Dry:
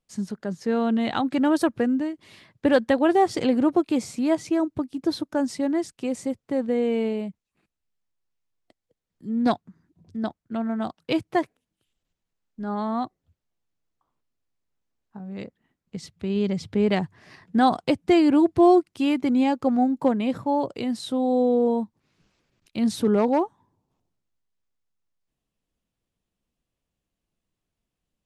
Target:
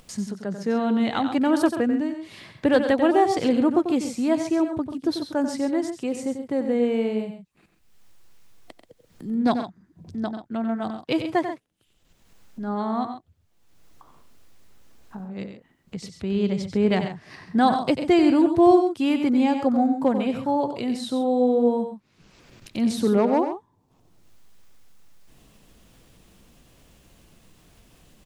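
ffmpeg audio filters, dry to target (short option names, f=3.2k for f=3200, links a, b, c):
-filter_complex "[0:a]acompressor=mode=upward:threshold=-32dB:ratio=2.5,asplit=2[a][b];[b]aecho=0:1:92|133:0.355|0.266[c];[a][c]amix=inputs=2:normalize=0"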